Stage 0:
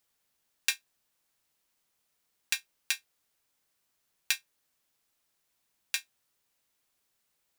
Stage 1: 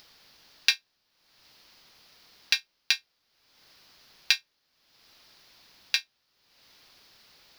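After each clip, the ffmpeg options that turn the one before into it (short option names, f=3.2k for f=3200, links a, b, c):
-af "acompressor=mode=upward:threshold=-45dB:ratio=2.5,highshelf=f=6.2k:t=q:w=3:g=-9,volume=4.5dB"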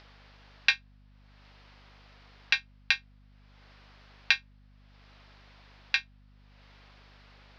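-af "highpass=400,lowpass=2.3k,aeval=exprs='val(0)+0.000794*(sin(2*PI*50*n/s)+sin(2*PI*2*50*n/s)/2+sin(2*PI*3*50*n/s)/3+sin(2*PI*4*50*n/s)/4+sin(2*PI*5*50*n/s)/5)':c=same,volume=5.5dB"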